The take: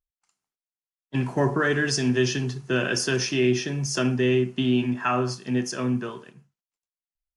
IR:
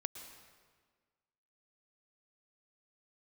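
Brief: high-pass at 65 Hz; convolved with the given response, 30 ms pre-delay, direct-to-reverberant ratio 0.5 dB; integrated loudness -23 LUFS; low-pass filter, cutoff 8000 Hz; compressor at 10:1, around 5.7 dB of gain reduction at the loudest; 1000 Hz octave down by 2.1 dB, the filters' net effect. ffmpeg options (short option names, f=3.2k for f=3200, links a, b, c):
-filter_complex "[0:a]highpass=65,lowpass=8k,equalizer=f=1k:t=o:g=-3,acompressor=threshold=-23dB:ratio=10,asplit=2[a][b];[1:a]atrim=start_sample=2205,adelay=30[c];[b][c]afir=irnorm=-1:irlink=0,volume=1dB[d];[a][d]amix=inputs=2:normalize=0,volume=3.5dB"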